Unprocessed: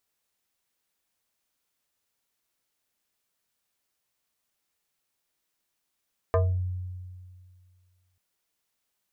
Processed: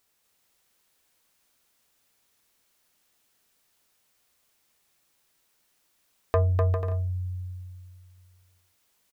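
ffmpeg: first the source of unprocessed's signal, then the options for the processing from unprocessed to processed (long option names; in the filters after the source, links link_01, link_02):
-f lavfi -i "aevalsrc='0.126*pow(10,-3*t/2.08)*sin(2*PI*91.1*t+1.9*pow(10,-3*t/0.34)*sin(2*PI*6.14*91.1*t))':duration=1.84:sample_rate=44100"
-filter_complex "[0:a]asplit=2[link_01][link_02];[link_02]acompressor=threshold=-35dB:ratio=6,volume=3dB[link_03];[link_01][link_03]amix=inputs=2:normalize=0,asoftclip=type=tanh:threshold=-12.5dB,aecho=1:1:250|400|490|544|576.4:0.631|0.398|0.251|0.158|0.1"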